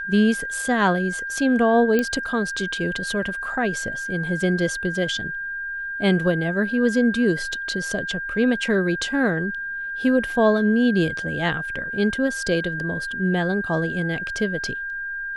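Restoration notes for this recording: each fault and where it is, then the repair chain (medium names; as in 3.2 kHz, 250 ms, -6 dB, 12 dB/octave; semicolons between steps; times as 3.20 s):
whine 1.6 kHz -27 dBFS
1.99 s: pop -9 dBFS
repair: de-click; band-stop 1.6 kHz, Q 30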